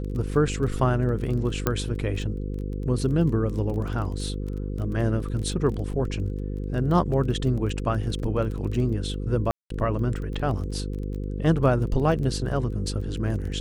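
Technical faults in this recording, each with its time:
mains buzz 50 Hz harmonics 10 −30 dBFS
surface crackle 18 per second −32 dBFS
0:01.67: click −8 dBFS
0:09.51–0:09.70: drop-out 193 ms

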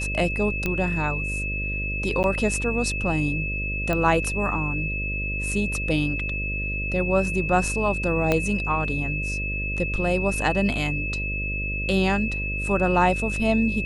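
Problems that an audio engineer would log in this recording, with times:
mains buzz 50 Hz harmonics 12 −30 dBFS
whistle 2,600 Hz −28 dBFS
0:00.66: click −11 dBFS
0:02.23–0:02.24: drop-out 9.7 ms
0:03.93: click −12 dBFS
0:08.32: click −8 dBFS

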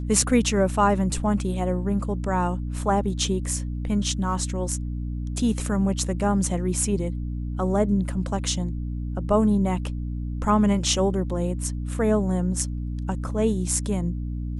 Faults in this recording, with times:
mains hum 60 Hz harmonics 5 −29 dBFS

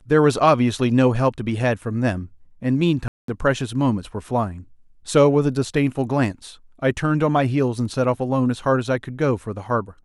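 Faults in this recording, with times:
0:03.08–0:03.28: drop-out 203 ms

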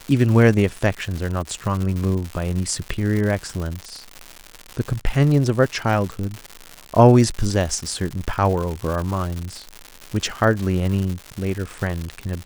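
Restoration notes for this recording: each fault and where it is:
surface crackle 200 per second −25 dBFS

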